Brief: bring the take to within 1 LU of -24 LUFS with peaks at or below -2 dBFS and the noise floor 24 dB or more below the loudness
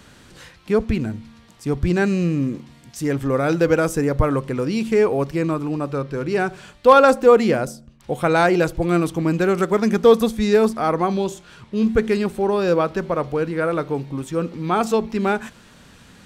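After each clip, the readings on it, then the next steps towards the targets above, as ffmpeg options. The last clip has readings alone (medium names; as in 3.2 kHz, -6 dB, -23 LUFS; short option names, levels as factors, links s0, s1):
loudness -19.5 LUFS; peak level -2.5 dBFS; loudness target -24.0 LUFS
-> -af "volume=0.596"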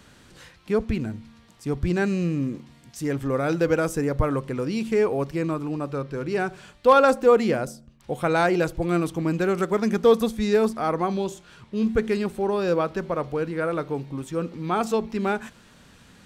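loudness -24.0 LUFS; peak level -7.0 dBFS; noise floor -53 dBFS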